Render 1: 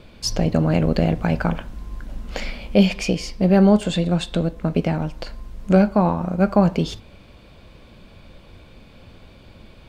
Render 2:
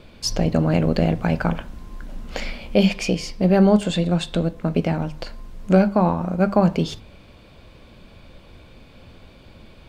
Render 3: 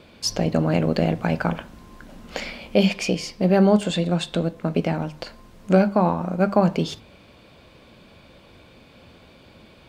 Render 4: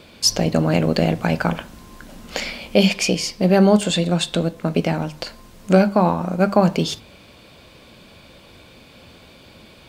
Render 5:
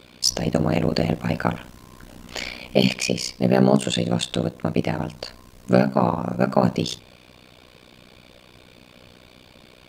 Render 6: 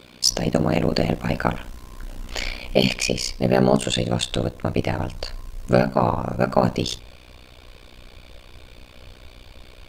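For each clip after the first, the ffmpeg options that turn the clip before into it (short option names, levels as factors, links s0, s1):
-af "bandreject=f=50:t=h:w=6,bandreject=f=100:t=h:w=6,bandreject=f=150:t=h:w=6,bandreject=f=200:t=h:w=6"
-af "highpass=f=150:p=1"
-af "highshelf=f=3800:g=8.5,volume=1.33"
-af "tremolo=f=62:d=1,volume=1.12"
-af "asubboost=boost=10:cutoff=56,volume=1.19"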